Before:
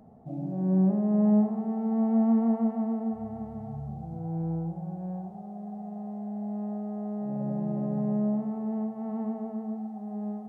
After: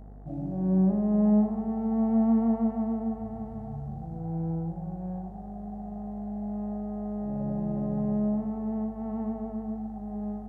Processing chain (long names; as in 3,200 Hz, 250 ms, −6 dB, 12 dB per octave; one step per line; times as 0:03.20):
hum with harmonics 50 Hz, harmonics 39, −46 dBFS −9 dB per octave